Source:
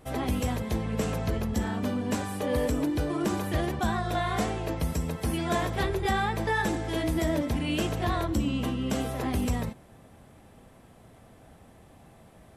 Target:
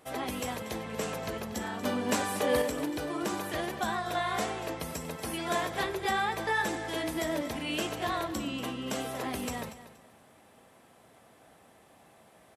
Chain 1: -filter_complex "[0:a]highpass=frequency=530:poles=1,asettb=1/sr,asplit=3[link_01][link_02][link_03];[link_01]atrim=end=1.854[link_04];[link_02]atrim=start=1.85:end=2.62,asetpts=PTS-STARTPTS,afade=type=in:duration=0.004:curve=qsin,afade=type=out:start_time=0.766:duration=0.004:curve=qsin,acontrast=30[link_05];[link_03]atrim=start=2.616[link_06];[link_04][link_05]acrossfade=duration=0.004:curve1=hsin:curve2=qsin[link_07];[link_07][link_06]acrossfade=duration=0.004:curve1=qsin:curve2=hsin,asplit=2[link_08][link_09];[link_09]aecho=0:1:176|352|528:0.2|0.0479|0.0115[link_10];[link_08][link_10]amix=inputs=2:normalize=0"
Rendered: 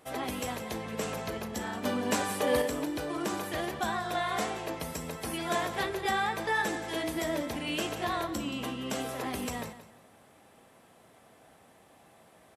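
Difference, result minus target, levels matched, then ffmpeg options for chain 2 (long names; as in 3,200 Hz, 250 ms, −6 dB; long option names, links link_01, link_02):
echo 61 ms early
-filter_complex "[0:a]highpass=frequency=530:poles=1,asettb=1/sr,asplit=3[link_01][link_02][link_03];[link_01]atrim=end=1.854[link_04];[link_02]atrim=start=1.85:end=2.62,asetpts=PTS-STARTPTS,afade=type=in:duration=0.004:curve=qsin,afade=type=out:start_time=0.766:duration=0.004:curve=qsin,acontrast=30[link_05];[link_03]atrim=start=2.616[link_06];[link_04][link_05]acrossfade=duration=0.004:curve1=hsin:curve2=qsin[link_07];[link_07][link_06]acrossfade=duration=0.004:curve1=qsin:curve2=hsin,asplit=2[link_08][link_09];[link_09]aecho=0:1:237|474|711:0.2|0.0479|0.0115[link_10];[link_08][link_10]amix=inputs=2:normalize=0"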